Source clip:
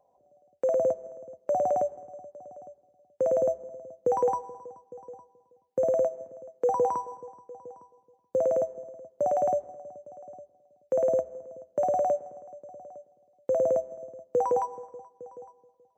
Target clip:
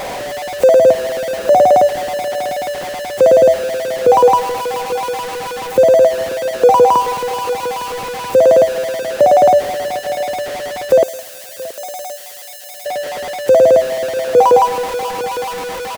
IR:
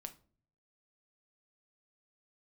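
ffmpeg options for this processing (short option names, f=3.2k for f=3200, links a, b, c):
-filter_complex "[0:a]aeval=exprs='val(0)+0.5*0.0178*sgn(val(0))':c=same,asettb=1/sr,asplit=3[a][b][c];[a]atrim=end=11.034[d];[b]atrim=start=11.03:end=12.86,asetpts=PTS-STARTPTS,afade=t=in:d=0.004:c=qsin,afade=t=out:st=1.826:d=0.004:c=qsin,aderivative[e];[c]atrim=start=12.856[f];[d][e]acrossfade=d=0.004:c1=hsin:c2=qsin[g];[g][f]acrossfade=d=0.004:c1=qsin:c2=hsin,asplit=2[h][i];[i]aecho=0:1:676:0.119[j];[h][j]amix=inputs=2:normalize=0,alimiter=level_in=17.5dB:limit=-1dB:release=50:level=0:latency=1,volume=-1dB"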